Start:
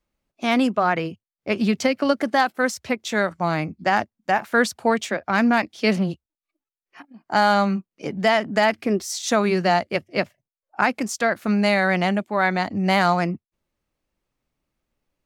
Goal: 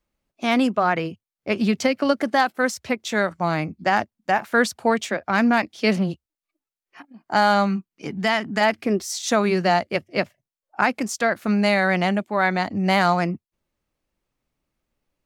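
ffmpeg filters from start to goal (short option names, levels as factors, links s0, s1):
-filter_complex "[0:a]asettb=1/sr,asplit=3[s0][s1][s2];[s0]atrim=end=7.664[s3];[s1]atrim=start=7.66:end=8.61,asetpts=PTS-STARTPTS,afade=t=in:d=0.004:c=qsin,afade=t=out:st=0.946:d=0.004:c=qsin,equalizer=f=560:t=o:w=0.56:g=-10.5[s4];[s2]atrim=start=8.606[s5];[s3][s4]acrossfade=d=0.004:c1=hsin:c2=qsin[s6];[s6][s5]acrossfade=d=0.004:c1=qsin:c2=hsin"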